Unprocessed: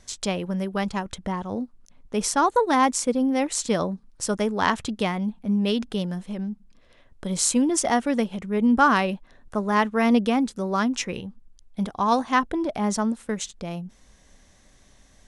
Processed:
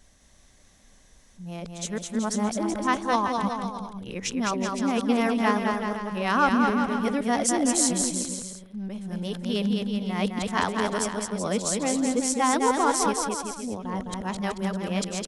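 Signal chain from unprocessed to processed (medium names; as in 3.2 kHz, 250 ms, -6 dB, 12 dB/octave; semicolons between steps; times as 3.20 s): reverse the whole clip; treble shelf 6.5 kHz +5.5 dB; bouncing-ball echo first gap 210 ms, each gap 0.8×, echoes 5; trim -4 dB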